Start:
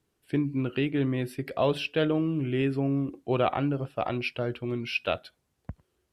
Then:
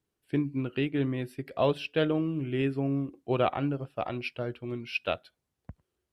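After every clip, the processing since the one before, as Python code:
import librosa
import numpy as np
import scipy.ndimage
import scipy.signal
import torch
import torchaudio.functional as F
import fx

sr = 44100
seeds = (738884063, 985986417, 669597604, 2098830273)

y = fx.upward_expand(x, sr, threshold_db=-37.0, expansion=1.5)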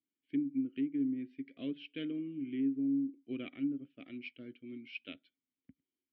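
y = fx.vowel_filter(x, sr, vowel='i')
y = fx.env_lowpass_down(y, sr, base_hz=990.0, full_db=-30.5)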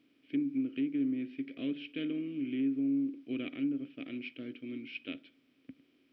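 y = fx.bin_compress(x, sr, power=0.6)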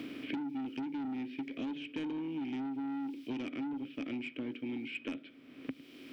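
y = 10.0 ** (-35.5 / 20.0) * np.tanh(x / 10.0 ** (-35.5 / 20.0))
y = fx.band_squash(y, sr, depth_pct=100)
y = F.gain(torch.from_numpy(y), 1.0).numpy()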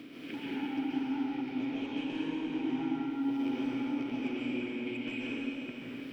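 y = fx.rev_plate(x, sr, seeds[0], rt60_s=3.9, hf_ratio=0.9, predelay_ms=115, drr_db=-9.0)
y = F.gain(torch.from_numpy(y), -5.0).numpy()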